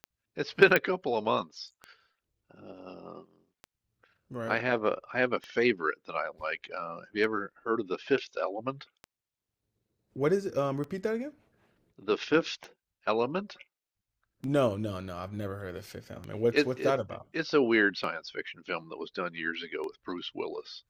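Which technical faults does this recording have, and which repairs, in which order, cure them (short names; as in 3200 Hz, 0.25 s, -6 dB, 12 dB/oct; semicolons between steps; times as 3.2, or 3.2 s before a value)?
tick 33 1/3 rpm -26 dBFS
0.76 pop -10 dBFS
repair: de-click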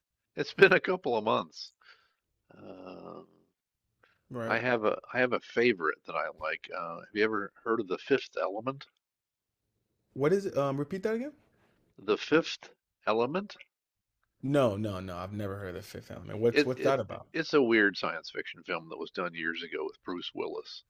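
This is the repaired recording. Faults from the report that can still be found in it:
none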